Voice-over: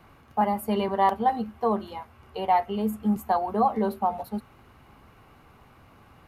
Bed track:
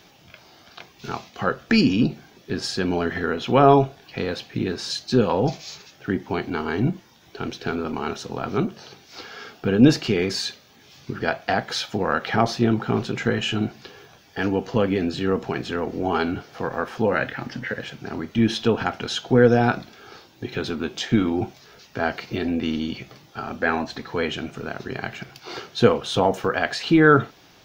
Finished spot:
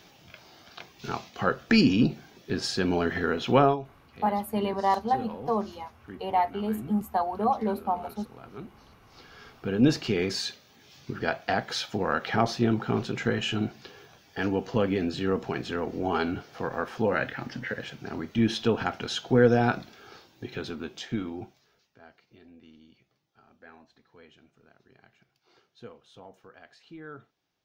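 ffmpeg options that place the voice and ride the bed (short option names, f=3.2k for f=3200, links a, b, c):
-filter_complex "[0:a]adelay=3850,volume=-2.5dB[a];[1:a]volume=12dB,afade=t=out:st=3.56:d=0.21:silence=0.149624,afade=t=in:st=8.99:d=1.25:silence=0.188365,afade=t=out:st=19.91:d=2.08:silence=0.0595662[b];[a][b]amix=inputs=2:normalize=0"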